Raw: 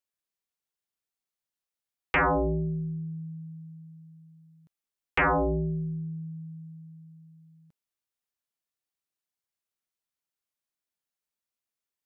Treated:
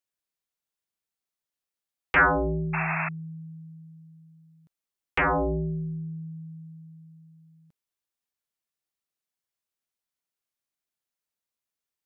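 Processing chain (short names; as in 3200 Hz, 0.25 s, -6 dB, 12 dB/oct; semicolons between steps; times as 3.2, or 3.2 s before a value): 2.16–2.68 bell 1500 Hz +11 dB 0.44 oct; 2.73–3.09 painted sound noise 620–2700 Hz -29 dBFS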